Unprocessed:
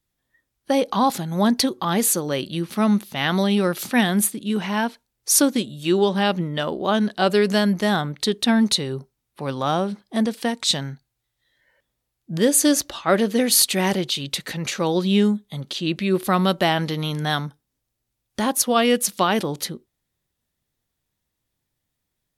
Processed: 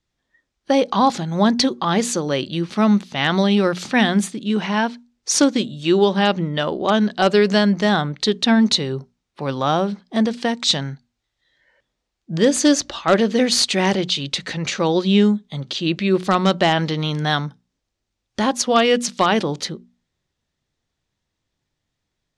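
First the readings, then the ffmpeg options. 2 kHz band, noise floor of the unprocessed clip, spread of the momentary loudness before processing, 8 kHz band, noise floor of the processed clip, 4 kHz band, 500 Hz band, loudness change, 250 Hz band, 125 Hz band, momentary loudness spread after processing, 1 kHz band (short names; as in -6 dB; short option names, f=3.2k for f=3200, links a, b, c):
+3.0 dB, -79 dBFS, 10 LU, -3.0 dB, -79 dBFS, +3.0 dB, +3.0 dB, +2.0 dB, +2.5 dB, +2.5 dB, 9 LU, +3.0 dB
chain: -filter_complex "[0:a]bandreject=f=60:t=h:w=6,bandreject=f=120:t=h:w=6,bandreject=f=180:t=h:w=6,bandreject=f=240:t=h:w=6,asplit=2[a][b];[b]aeval=exprs='(mod(2.51*val(0)+1,2)-1)/2.51':c=same,volume=-11dB[c];[a][c]amix=inputs=2:normalize=0,lowpass=f=6.9k:w=0.5412,lowpass=f=6.9k:w=1.3066,volume=1dB"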